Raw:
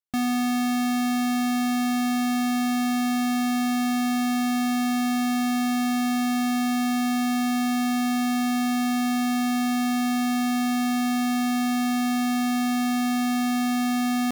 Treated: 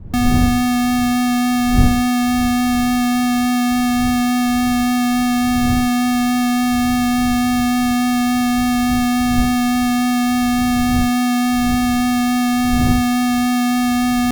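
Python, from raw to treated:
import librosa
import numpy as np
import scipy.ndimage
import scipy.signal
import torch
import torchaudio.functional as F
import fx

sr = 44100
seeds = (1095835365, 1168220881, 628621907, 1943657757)

y = fx.dmg_wind(x, sr, seeds[0], corner_hz=97.0, level_db=-33.0)
y = fx.vibrato(y, sr, rate_hz=3.5, depth_cents=8.4)
y = y * 10.0 ** (7.5 / 20.0)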